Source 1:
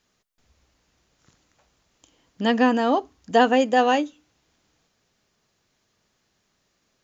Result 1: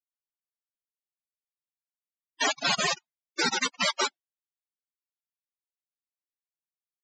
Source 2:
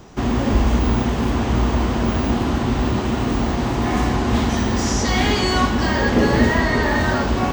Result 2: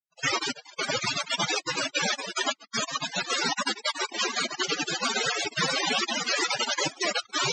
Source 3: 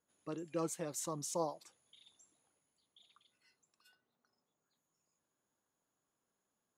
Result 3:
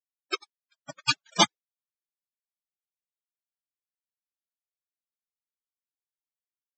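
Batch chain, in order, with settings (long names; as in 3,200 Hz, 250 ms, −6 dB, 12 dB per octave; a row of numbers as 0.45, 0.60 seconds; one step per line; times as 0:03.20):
time-frequency cells dropped at random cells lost 73%
fuzz pedal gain 35 dB, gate −38 dBFS
noise gate with hold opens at −42 dBFS
high-frequency loss of the air 85 metres
frequency shifter +26 Hz
cochlear-implant simulation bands 1
spectral peaks only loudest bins 32
high-shelf EQ 3,800 Hz −7 dB
loudness normalisation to −27 LKFS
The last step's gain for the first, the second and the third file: 0.0, −0.5, +14.5 decibels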